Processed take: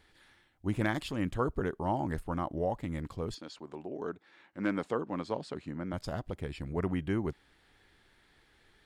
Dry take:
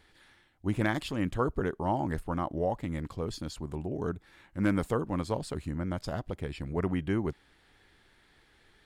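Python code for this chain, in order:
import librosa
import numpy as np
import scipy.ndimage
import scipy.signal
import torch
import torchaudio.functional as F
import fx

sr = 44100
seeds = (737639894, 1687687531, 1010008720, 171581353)

y = fx.bandpass_edges(x, sr, low_hz=fx.line((3.34, 360.0), (5.92, 160.0)), high_hz=5100.0, at=(3.34, 5.92), fade=0.02)
y = y * 10.0 ** (-2.0 / 20.0)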